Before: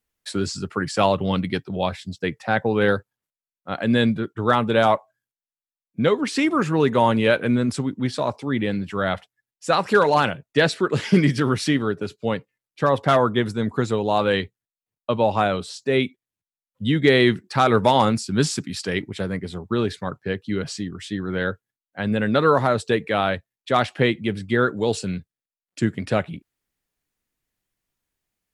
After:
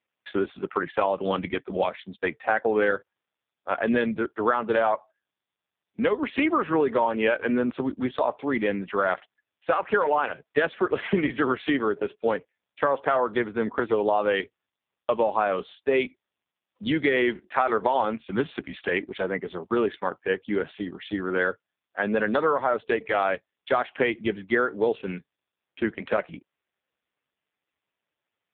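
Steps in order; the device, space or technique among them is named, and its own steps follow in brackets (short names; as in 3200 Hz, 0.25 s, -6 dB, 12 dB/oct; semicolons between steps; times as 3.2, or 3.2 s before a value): 7.61–8.34 dynamic EQ 1900 Hz, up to -6 dB, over -49 dBFS, Q 2.9; voicemail (BPF 370–3100 Hz; compressor 10:1, threshold -23 dBFS, peak gain reduction 11 dB; gain +5.5 dB; AMR-NB 5.15 kbps 8000 Hz)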